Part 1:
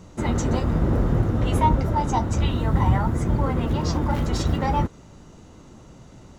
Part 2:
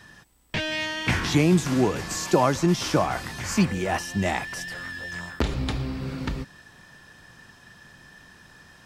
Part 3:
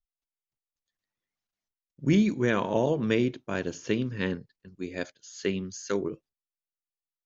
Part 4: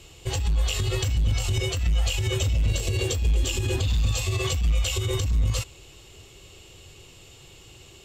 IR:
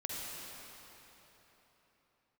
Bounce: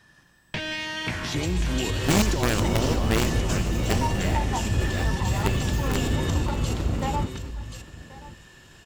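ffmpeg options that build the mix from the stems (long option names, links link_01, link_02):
-filter_complex "[0:a]adynamicsmooth=sensitivity=4:basefreq=560,adelay=2400,volume=-1dB,asplit=2[link_01][link_02];[link_02]volume=-21dB[link_03];[1:a]acompressor=threshold=-29dB:ratio=6,volume=-0.5dB,asplit=3[link_04][link_05][link_06];[link_05]volume=-7dB[link_07];[link_06]volume=-5.5dB[link_08];[2:a]acrusher=bits=4:dc=4:mix=0:aa=0.000001,volume=-0.5dB,asplit=3[link_09][link_10][link_11];[link_10]volume=-18dB[link_12];[3:a]alimiter=limit=-19.5dB:level=0:latency=1,adelay=1100,volume=-3.5dB,asplit=3[link_13][link_14][link_15];[link_14]volume=-7dB[link_16];[link_15]volume=-7dB[link_17];[link_11]apad=whole_len=390521[link_18];[link_04][link_18]sidechaingate=range=-33dB:threshold=-42dB:ratio=16:detection=peak[link_19];[link_01][link_19][link_13]amix=inputs=3:normalize=0,agate=range=-18dB:threshold=-42dB:ratio=16:detection=peak,alimiter=limit=-17dB:level=0:latency=1:release=323,volume=0dB[link_20];[4:a]atrim=start_sample=2205[link_21];[link_07][link_16]amix=inputs=2:normalize=0[link_22];[link_22][link_21]afir=irnorm=-1:irlink=0[link_23];[link_03][link_08][link_12][link_17]amix=inputs=4:normalize=0,aecho=0:1:1081:1[link_24];[link_09][link_20][link_23][link_24]amix=inputs=4:normalize=0"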